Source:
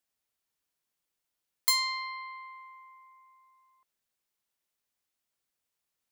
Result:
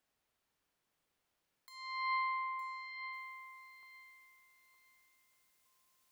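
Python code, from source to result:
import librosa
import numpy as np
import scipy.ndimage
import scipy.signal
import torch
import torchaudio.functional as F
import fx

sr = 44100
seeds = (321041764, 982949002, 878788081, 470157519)

y = fx.high_shelf(x, sr, hz=3600.0, db=fx.steps((0.0, -11.5), (3.12, 2.5)))
y = fx.over_compress(y, sr, threshold_db=-41.0, ratio=-0.5)
y = fx.echo_feedback(y, sr, ms=913, feedback_pct=24, wet_db=-8.0)
y = F.gain(torch.from_numpy(y), 3.5).numpy()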